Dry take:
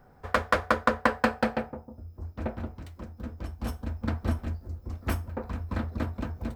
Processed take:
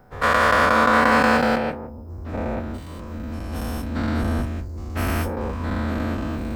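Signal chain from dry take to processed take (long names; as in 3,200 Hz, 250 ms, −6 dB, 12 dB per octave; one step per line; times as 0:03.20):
every bin's largest magnitude spread in time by 240 ms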